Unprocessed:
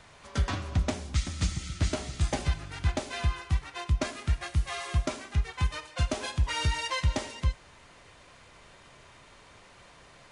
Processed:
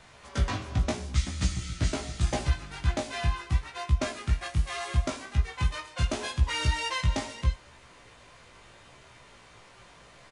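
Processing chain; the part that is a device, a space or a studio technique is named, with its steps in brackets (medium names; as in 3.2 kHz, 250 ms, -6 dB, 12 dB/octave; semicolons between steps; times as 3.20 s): double-tracked vocal (doubling 26 ms -12 dB; chorus 0.77 Hz, delay 15.5 ms, depth 3 ms); trim +3.5 dB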